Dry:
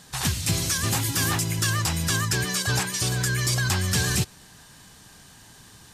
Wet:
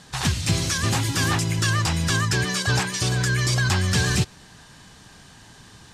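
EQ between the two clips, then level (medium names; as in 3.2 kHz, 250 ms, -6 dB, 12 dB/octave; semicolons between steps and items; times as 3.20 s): distance through air 56 m; +3.5 dB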